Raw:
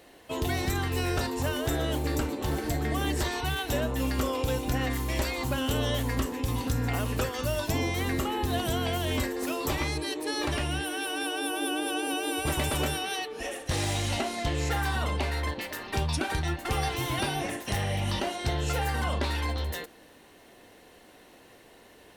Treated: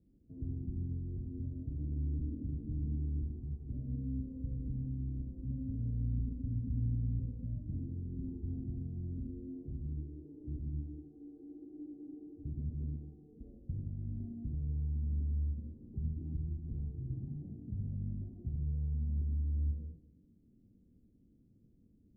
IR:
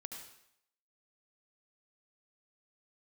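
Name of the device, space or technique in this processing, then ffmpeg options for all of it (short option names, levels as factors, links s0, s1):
club heard from the street: -filter_complex "[0:a]alimiter=level_in=1.06:limit=0.0631:level=0:latency=1,volume=0.944,lowpass=f=220:w=0.5412,lowpass=f=220:w=1.3066[s0];[1:a]atrim=start_sample=2205[s1];[s0][s1]afir=irnorm=-1:irlink=0,volume=1.33"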